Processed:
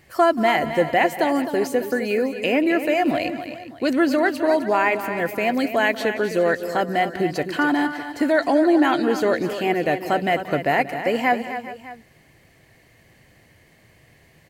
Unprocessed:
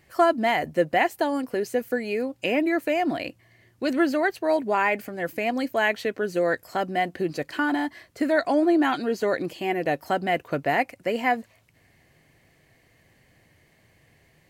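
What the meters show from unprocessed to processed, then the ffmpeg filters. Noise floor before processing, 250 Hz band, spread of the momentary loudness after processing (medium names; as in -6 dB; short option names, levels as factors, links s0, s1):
-62 dBFS, +4.5 dB, 7 LU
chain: -filter_complex "[0:a]asplit=2[s0][s1];[s1]alimiter=limit=0.112:level=0:latency=1:release=112,volume=0.841[s2];[s0][s2]amix=inputs=2:normalize=0,aecho=1:1:182|260|403|604:0.133|0.299|0.141|0.119"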